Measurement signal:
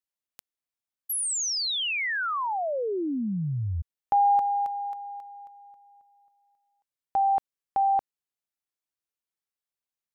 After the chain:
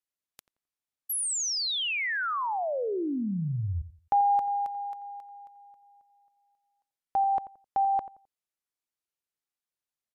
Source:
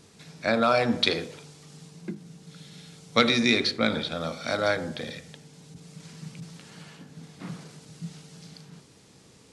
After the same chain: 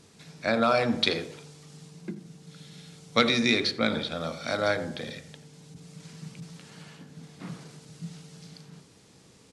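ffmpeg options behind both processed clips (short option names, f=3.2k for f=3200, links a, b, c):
-filter_complex "[0:a]asplit=2[a][b];[b]adelay=87,lowpass=f=1.4k:p=1,volume=-14dB,asplit=2[c][d];[d]adelay=87,lowpass=f=1.4k:p=1,volume=0.28,asplit=2[e][f];[f]adelay=87,lowpass=f=1.4k:p=1,volume=0.28[g];[a][c][e][g]amix=inputs=4:normalize=0,volume=-1dB" -ar 32000 -c:a libmp3lame -b:a 160k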